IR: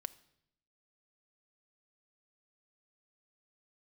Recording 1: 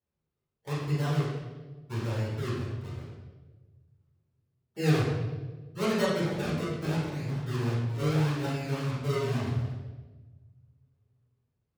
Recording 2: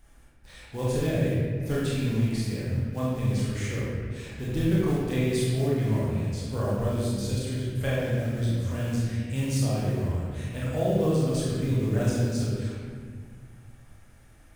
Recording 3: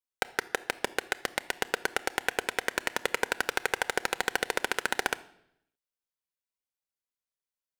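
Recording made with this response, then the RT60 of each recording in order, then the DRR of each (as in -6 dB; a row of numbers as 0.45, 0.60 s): 3; 1.3, 1.8, 0.75 s; -9.5, -7.5, 11.5 dB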